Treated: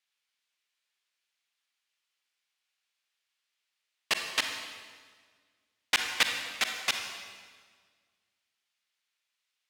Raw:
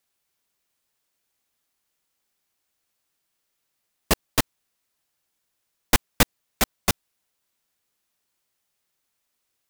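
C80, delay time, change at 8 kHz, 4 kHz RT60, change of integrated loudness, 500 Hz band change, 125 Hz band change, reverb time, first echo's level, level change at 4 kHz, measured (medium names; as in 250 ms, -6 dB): 6.5 dB, no echo, -8.0 dB, 1.5 s, -5.0 dB, -13.5 dB, -27.0 dB, 1.6 s, no echo, -0.5 dB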